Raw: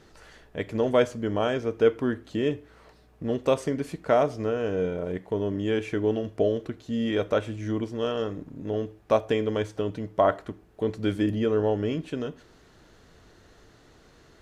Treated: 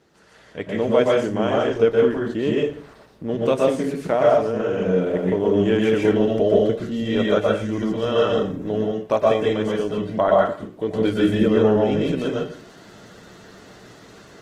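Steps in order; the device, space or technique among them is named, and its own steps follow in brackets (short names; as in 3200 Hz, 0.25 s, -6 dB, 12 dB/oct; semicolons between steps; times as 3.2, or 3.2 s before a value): far-field microphone of a smart speaker (reverb RT60 0.40 s, pre-delay 0.114 s, DRR -2.5 dB; HPF 120 Hz 12 dB/oct; AGC gain up to 11 dB; gain -3.5 dB; Opus 16 kbps 48000 Hz)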